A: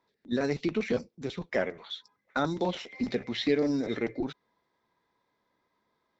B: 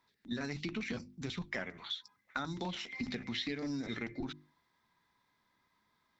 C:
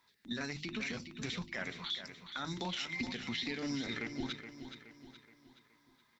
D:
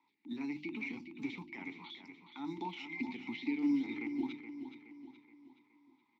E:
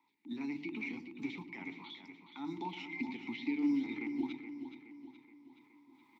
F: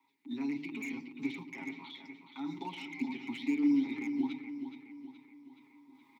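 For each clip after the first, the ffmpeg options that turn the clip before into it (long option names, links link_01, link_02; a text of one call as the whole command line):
ffmpeg -i in.wav -af "equalizer=frequency=490:width=1.1:gain=-13.5,bandreject=frequency=50:width_type=h:width=6,bandreject=frequency=100:width_type=h:width=6,bandreject=frequency=150:width_type=h:width=6,bandreject=frequency=200:width_type=h:width=6,bandreject=frequency=250:width_type=h:width=6,bandreject=frequency=300:width_type=h:width=6,bandreject=frequency=350:width_type=h:width=6,acompressor=threshold=-40dB:ratio=4,volume=4dB" out.wav
ffmpeg -i in.wav -filter_complex "[0:a]tiltshelf=frequency=1300:gain=-3.5,alimiter=level_in=6.5dB:limit=-24dB:level=0:latency=1:release=127,volume=-6.5dB,asplit=2[link_01][link_02];[link_02]aecho=0:1:422|844|1266|1688|2110:0.316|0.142|0.064|0.0288|0.013[link_03];[link_01][link_03]amix=inputs=2:normalize=0,volume=3dB" out.wav
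ffmpeg -i in.wav -filter_complex "[0:a]asplit=3[link_01][link_02][link_03];[link_01]bandpass=frequency=300:width_type=q:width=8,volume=0dB[link_04];[link_02]bandpass=frequency=870:width_type=q:width=8,volume=-6dB[link_05];[link_03]bandpass=frequency=2240:width_type=q:width=8,volume=-9dB[link_06];[link_04][link_05][link_06]amix=inputs=3:normalize=0,acrossover=split=120|660[link_07][link_08][link_09];[link_07]acrusher=bits=3:mode=log:mix=0:aa=0.000001[link_10];[link_10][link_08][link_09]amix=inputs=3:normalize=0,volume=10dB" out.wav
ffmpeg -i in.wav -filter_complex "[0:a]areverse,acompressor=mode=upward:threshold=-56dB:ratio=2.5,areverse,asplit=2[link_01][link_02];[link_02]adelay=109,lowpass=frequency=1100:poles=1,volume=-12dB,asplit=2[link_03][link_04];[link_04]adelay=109,lowpass=frequency=1100:poles=1,volume=0.55,asplit=2[link_05][link_06];[link_06]adelay=109,lowpass=frequency=1100:poles=1,volume=0.55,asplit=2[link_07][link_08];[link_08]adelay=109,lowpass=frequency=1100:poles=1,volume=0.55,asplit=2[link_09][link_10];[link_10]adelay=109,lowpass=frequency=1100:poles=1,volume=0.55,asplit=2[link_11][link_12];[link_12]adelay=109,lowpass=frequency=1100:poles=1,volume=0.55[link_13];[link_01][link_03][link_05][link_07][link_09][link_11][link_13]amix=inputs=7:normalize=0" out.wav
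ffmpeg -i in.wav -filter_complex "[0:a]highpass=120,aecho=1:1:7.4:0.8,acrossover=split=680[link_01][link_02];[link_02]asoftclip=type=hard:threshold=-39dB[link_03];[link_01][link_03]amix=inputs=2:normalize=0" out.wav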